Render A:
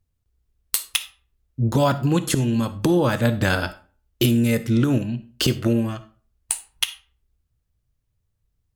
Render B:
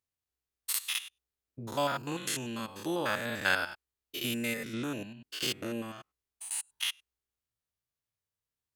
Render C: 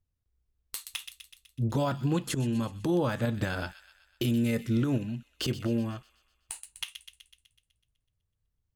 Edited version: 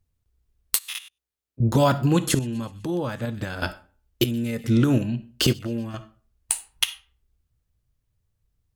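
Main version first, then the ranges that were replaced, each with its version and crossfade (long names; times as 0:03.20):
A
0:00.78–0:01.60: punch in from B
0:02.39–0:03.62: punch in from C
0:04.24–0:04.64: punch in from C
0:05.53–0:05.94: punch in from C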